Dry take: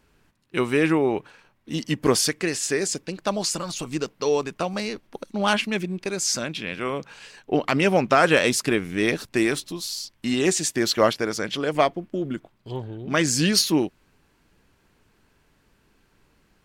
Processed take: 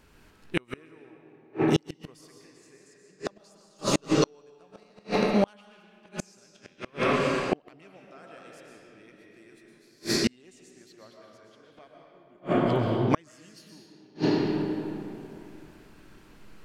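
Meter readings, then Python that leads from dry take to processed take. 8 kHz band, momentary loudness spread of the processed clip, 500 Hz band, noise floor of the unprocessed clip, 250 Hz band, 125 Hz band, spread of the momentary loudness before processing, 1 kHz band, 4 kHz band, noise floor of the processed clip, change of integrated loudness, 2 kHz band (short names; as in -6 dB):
-14.5 dB, 19 LU, -6.5 dB, -64 dBFS, -4.5 dB, -3.0 dB, 13 LU, -7.0 dB, -10.5 dB, -59 dBFS, -4.5 dB, -10.5 dB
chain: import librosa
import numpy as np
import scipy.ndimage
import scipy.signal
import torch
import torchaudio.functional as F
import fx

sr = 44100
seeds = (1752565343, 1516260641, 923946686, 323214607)

y = fx.rev_freeverb(x, sr, rt60_s=2.9, hf_ratio=0.6, predelay_ms=85, drr_db=-2.0)
y = fx.gate_flip(y, sr, shuts_db=-14.0, range_db=-38)
y = F.gain(torch.from_numpy(y), 4.0).numpy()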